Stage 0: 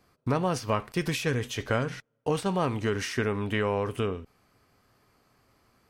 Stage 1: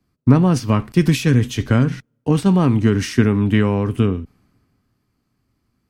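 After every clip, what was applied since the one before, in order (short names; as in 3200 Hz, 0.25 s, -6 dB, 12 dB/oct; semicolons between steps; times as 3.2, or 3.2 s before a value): resonant low shelf 370 Hz +9 dB, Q 1.5; three-band expander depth 40%; gain +5.5 dB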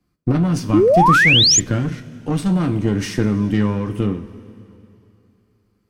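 one diode to ground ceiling -16 dBFS; two-slope reverb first 0.22 s, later 2.9 s, from -18 dB, DRR 5.5 dB; painted sound rise, 0.73–1.6, 280–7400 Hz -11 dBFS; gain -1.5 dB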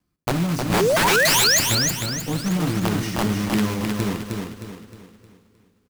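block floating point 3-bit; wrapped overs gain 8 dB; feedback echo 0.31 s, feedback 40%, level -4 dB; gain -5.5 dB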